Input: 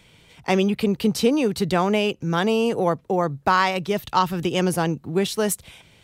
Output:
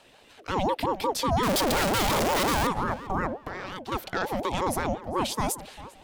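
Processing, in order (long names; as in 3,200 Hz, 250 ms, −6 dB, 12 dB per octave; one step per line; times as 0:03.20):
0:01.43–0:02.67: sign of each sample alone
brickwall limiter −15.5 dBFS, peak gain reduction 9 dB
0:03.37–0:03.92: downward compressor 10 to 1, threshold −30 dBFS, peak gain reduction 9.5 dB
on a send: tape delay 400 ms, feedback 28%, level −13.5 dB, low-pass 2,300 Hz
on the sum: ring modulator whose carrier an LFO sweeps 560 Hz, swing 35%, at 5.6 Hz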